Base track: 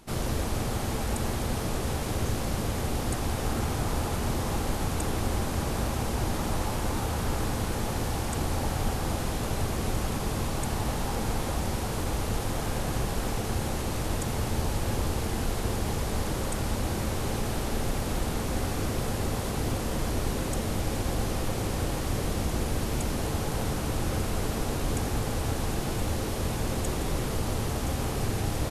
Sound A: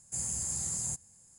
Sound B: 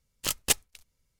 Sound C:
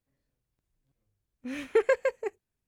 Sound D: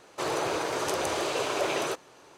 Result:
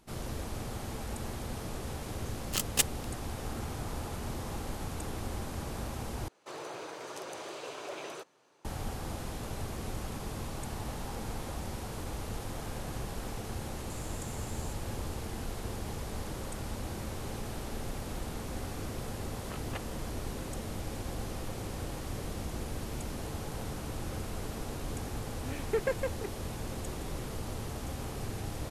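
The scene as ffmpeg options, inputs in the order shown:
ffmpeg -i bed.wav -i cue0.wav -i cue1.wav -i cue2.wav -i cue3.wav -filter_complex "[2:a]asplit=2[link_01][link_02];[0:a]volume=-9dB[link_03];[4:a]highpass=frequency=110:width=0.5412,highpass=frequency=110:width=1.3066[link_04];[1:a]acompressor=threshold=-46dB:ratio=6:attack=3.2:release=140:knee=1:detection=peak[link_05];[link_02]asuperpass=centerf=940:order=4:qfactor=0.7[link_06];[link_03]asplit=2[link_07][link_08];[link_07]atrim=end=6.284[link_09];[link_04]atrim=end=2.37,asetpts=PTS-STARTPTS,volume=-13dB[link_10];[link_08]atrim=start=8.646[link_11];[link_01]atrim=end=1.19,asetpts=PTS-STARTPTS,volume=-3dB,afade=type=in:duration=0.004:curve=hsin,afade=type=out:start_time=1.186:duration=0.004:curve=hsin,adelay=2290[link_12];[link_05]atrim=end=1.38,asetpts=PTS-STARTPTS,volume=-3dB,afade=type=in:duration=0.004:curve=hsin,afade=type=out:start_time=1.376:duration=0.004:curve=hsin,adelay=13780[link_13];[link_06]atrim=end=1.19,asetpts=PTS-STARTPTS,volume=-7.5dB,afade=type=in:duration=0.004:curve=hsin,afade=type=out:start_time=1.186:duration=0.004:curve=hsin,adelay=19250[link_14];[3:a]atrim=end=2.67,asetpts=PTS-STARTPTS,volume=-7dB,afade=type=in:duration=0.004:curve=hsin,afade=type=out:start_time=2.666:duration=0.004:curve=hsin,adelay=23980[link_15];[link_09][link_10]acrossfade=duration=0.004:curve1=hsin:curve2=hsin[link_16];[link_16][link_11]acrossfade=duration=0.004:curve1=hsin:curve2=hsin[link_17];[link_17][link_12][link_13][link_14][link_15]amix=inputs=5:normalize=0" out.wav

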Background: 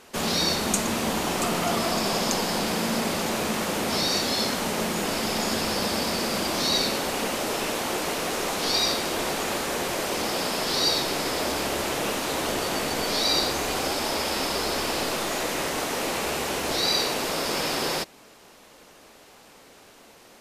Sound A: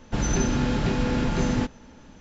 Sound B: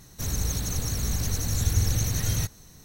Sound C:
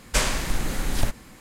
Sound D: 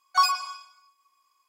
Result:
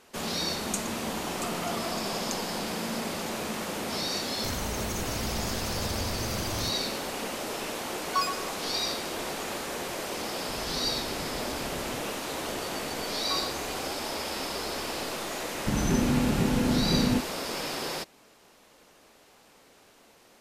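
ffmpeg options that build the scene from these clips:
ffmpeg -i bed.wav -i cue0.wav -i cue1.wav -i cue2.wav -i cue3.wav -filter_complex "[4:a]asplit=2[link_01][link_02];[1:a]asplit=2[link_03][link_04];[0:a]volume=-6.5dB[link_05];[2:a]acompressor=threshold=-25dB:ratio=6:attack=3.2:release=140:knee=1:detection=peak[link_06];[link_04]equalizer=frequency=220:width=0.83:gain=7.5[link_07];[link_06]atrim=end=2.84,asetpts=PTS-STARTPTS,volume=-5.5dB,afade=type=in:duration=0.004:curve=hsin,afade=type=out:start_time=2.836:duration=0.004:curve=hsin,adelay=4240[link_08];[link_01]atrim=end=1.48,asetpts=PTS-STARTPTS,volume=-7dB,afade=type=in:duration=0.004:curve=hsin,afade=type=out:start_time=1.476:duration=0.004:curve=hsin,adelay=7980[link_09];[link_03]atrim=end=2.2,asetpts=PTS-STARTPTS,volume=-18dB,afade=type=in:duration=0.004:curve=hsin,afade=type=out:start_time=2.196:duration=0.004:curve=hsin,adelay=10360[link_10];[link_02]atrim=end=1.48,asetpts=PTS-STARTPTS,volume=-16.5dB,afade=type=in:duration=0.004:curve=hsin,afade=type=out:start_time=1.476:duration=0.004:curve=hsin,adelay=13130[link_11];[link_07]atrim=end=2.2,asetpts=PTS-STARTPTS,volume=-6.5dB,afade=type=in:duration=0.004:curve=hsin,afade=type=out:start_time=2.196:duration=0.004:curve=hsin,adelay=15540[link_12];[link_05][link_08][link_09][link_10][link_11][link_12]amix=inputs=6:normalize=0" out.wav

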